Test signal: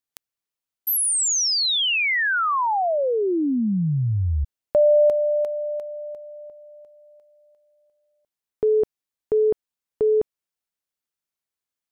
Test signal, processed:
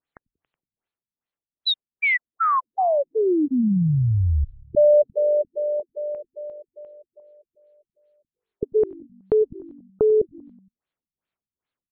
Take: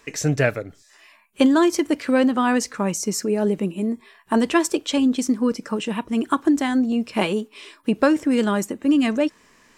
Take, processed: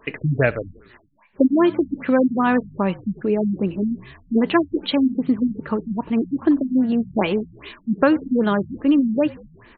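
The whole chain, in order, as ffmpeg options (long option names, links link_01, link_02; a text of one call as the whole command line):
ffmpeg -i in.wav -filter_complex "[0:a]asplit=2[link_01][link_02];[link_02]acompressor=threshold=-32dB:ratio=6:attack=15:release=634:detection=peak,volume=0.5dB[link_03];[link_01][link_03]amix=inputs=2:normalize=0,asplit=6[link_04][link_05][link_06][link_07][link_08][link_09];[link_05]adelay=93,afreqshift=-48,volume=-21.5dB[link_10];[link_06]adelay=186,afreqshift=-96,volume=-25.9dB[link_11];[link_07]adelay=279,afreqshift=-144,volume=-30.4dB[link_12];[link_08]adelay=372,afreqshift=-192,volume=-34.8dB[link_13];[link_09]adelay=465,afreqshift=-240,volume=-39.2dB[link_14];[link_04][link_10][link_11][link_12][link_13][link_14]amix=inputs=6:normalize=0,afftfilt=real='re*lt(b*sr/1024,240*pow(4600/240,0.5+0.5*sin(2*PI*2.5*pts/sr)))':imag='im*lt(b*sr/1024,240*pow(4600/240,0.5+0.5*sin(2*PI*2.5*pts/sr)))':win_size=1024:overlap=0.75" out.wav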